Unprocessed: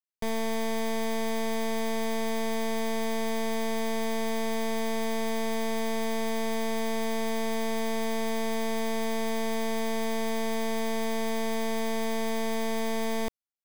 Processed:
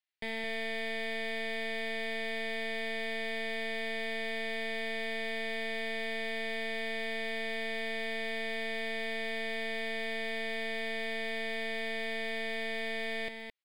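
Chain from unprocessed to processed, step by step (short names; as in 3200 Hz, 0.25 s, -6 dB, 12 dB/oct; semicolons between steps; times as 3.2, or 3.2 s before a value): band shelf 2900 Hz +11.5 dB; overdrive pedal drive 14 dB, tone 1800 Hz, clips at -17.5 dBFS; echo 0.216 s -7 dB; gain -7 dB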